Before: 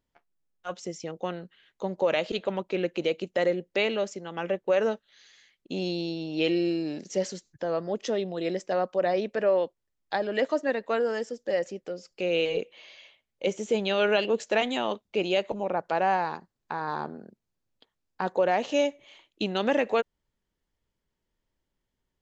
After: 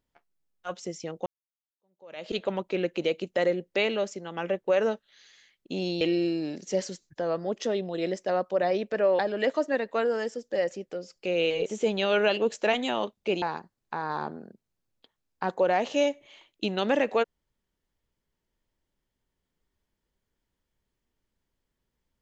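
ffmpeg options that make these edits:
-filter_complex "[0:a]asplit=6[a][b][c][d][e][f];[a]atrim=end=1.26,asetpts=PTS-STARTPTS,afade=t=out:st=1.256:d=0.004:c=hsin[g];[b]atrim=start=1.26:end=6.012,asetpts=PTS-STARTPTS,afade=t=in:d=1.06:c=exp[h];[c]atrim=start=6.438:end=9.622[i];[d]atrim=start=10.138:end=12.612[j];[e]atrim=start=13.538:end=15.302[k];[f]atrim=start=16.198[l];[g][h]concat=n=2:v=0:a=1[m];[m][i]acrossfade=d=0.004:c1=hsin:c2=hsin[n];[n][j]acrossfade=d=0.004:c1=hsin:c2=hsin[o];[o][k]acrossfade=d=0.004:c1=hsin:c2=hsin[p];[p][l]acrossfade=d=0.004:c1=hsin:c2=hsin"

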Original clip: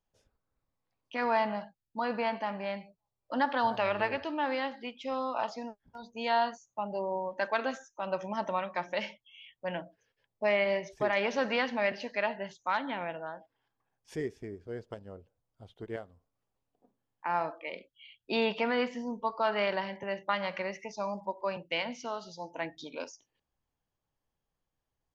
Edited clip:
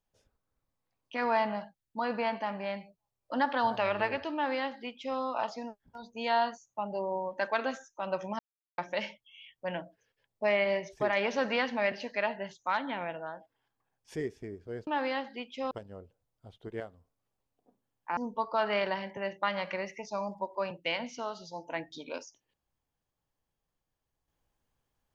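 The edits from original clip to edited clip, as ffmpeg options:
-filter_complex "[0:a]asplit=6[a][b][c][d][e][f];[a]atrim=end=8.39,asetpts=PTS-STARTPTS,afade=t=out:st=8.386:d=0.004:c=hsin[g];[b]atrim=start=8.39:end=8.78,asetpts=PTS-STARTPTS,volume=0[h];[c]atrim=start=8.78:end=14.872,asetpts=PTS-STARTPTS,afade=t=in:d=0.004:c=hsin[i];[d]atrim=start=4.338:end=5.182[j];[e]atrim=start=14.868:end=17.332[k];[f]atrim=start=19.028[l];[g][h][i]concat=n=3:v=0:a=1[m];[m][j]acrossfade=d=0.004:c1=hsin:c2=hsin[n];[n][k]acrossfade=d=0.004:c1=hsin:c2=hsin[o];[o][l]acrossfade=d=0.004:c1=hsin:c2=hsin"

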